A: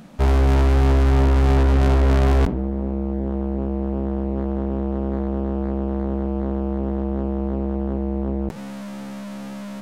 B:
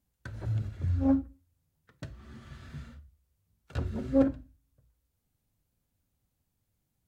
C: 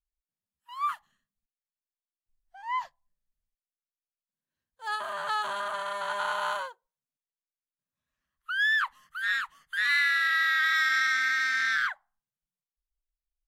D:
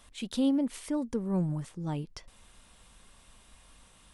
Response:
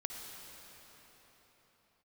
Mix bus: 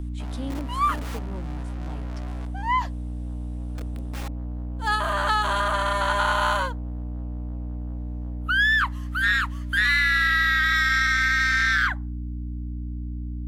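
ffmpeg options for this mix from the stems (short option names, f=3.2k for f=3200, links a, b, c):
-filter_complex "[0:a]highpass=f=530:w=0.5412,highpass=f=530:w=1.3066,volume=-17dB[a];[1:a]asoftclip=type=tanh:threshold=-15dB,tiltshelf=f=1.2k:g=7.5,aeval=exprs='(mod(8.41*val(0)+1,2)-1)/8.41':c=same,volume=-15.5dB[b];[2:a]acontrast=66,aeval=exprs='val(0)+0.0355*(sin(2*PI*60*n/s)+sin(2*PI*2*60*n/s)/2+sin(2*PI*3*60*n/s)/3+sin(2*PI*4*60*n/s)/4+sin(2*PI*5*60*n/s)/5)':c=same,volume=3dB[c];[3:a]volume=-5dB[d];[a][b][c][d]amix=inputs=4:normalize=0,equalizer=f=130:w=0.84:g=-8,acrossover=split=220[e][f];[f]acompressor=threshold=-18dB:ratio=6[g];[e][g]amix=inputs=2:normalize=0"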